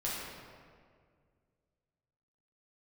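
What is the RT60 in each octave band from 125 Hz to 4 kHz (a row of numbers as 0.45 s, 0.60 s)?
2.7 s, 2.3 s, 2.2 s, 1.8 s, 1.6 s, 1.2 s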